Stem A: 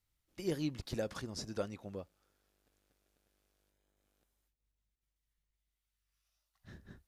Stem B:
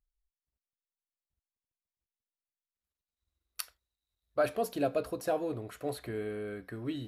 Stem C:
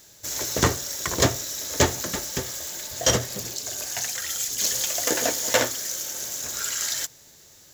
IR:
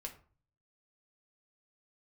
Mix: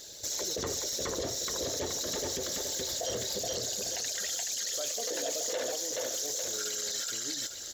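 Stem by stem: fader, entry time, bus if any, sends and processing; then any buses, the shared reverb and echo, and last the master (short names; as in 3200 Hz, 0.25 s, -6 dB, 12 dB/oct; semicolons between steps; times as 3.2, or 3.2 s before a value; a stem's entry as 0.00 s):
-11.0 dB, 0.00 s, no send, no echo send, dry
-9.0 dB, 0.40 s, no send, no echo send, dry
+0.5 dB, 0.00 s, no send, echo send -3 dB, formant sharpening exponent 1.5; compressor 2:1, threshold -36 dBFS, peak gain reduction 12 dB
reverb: off
echo: feedback echo 0.425 s, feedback 29%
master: graphic EQ 125/500/4000 Hz -5/+8/+10 dB; limiter -24.5 dBFS, peak gain reduction 15 dB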